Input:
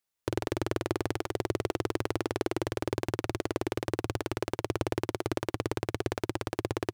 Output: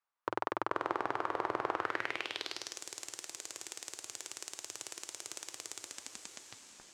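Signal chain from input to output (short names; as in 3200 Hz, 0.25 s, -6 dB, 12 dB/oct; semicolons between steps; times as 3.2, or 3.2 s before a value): tape stop at the end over 1.26 s; on a send: diffused feedback echo 0.561 s, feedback 45%, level -7 dB; on the sum: band-pass sweep 1100 Hz -> 7300 Hz, 1.73–2.82; gain +7.5 dB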